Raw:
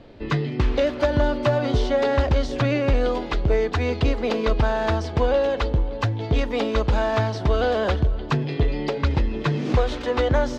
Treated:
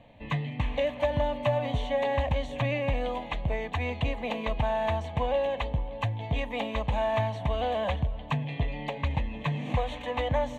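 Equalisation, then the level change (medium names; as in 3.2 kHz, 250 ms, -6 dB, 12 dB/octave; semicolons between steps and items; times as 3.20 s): bass shelf 67 Hz -10.5 dB; static phaser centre 1.4 kHz, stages 6; -2.5 dB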